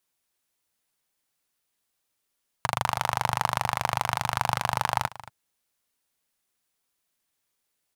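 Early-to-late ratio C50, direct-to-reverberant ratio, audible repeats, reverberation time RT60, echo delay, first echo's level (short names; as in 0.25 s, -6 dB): none, none, 1, none, 0.225 s, -17.0 dB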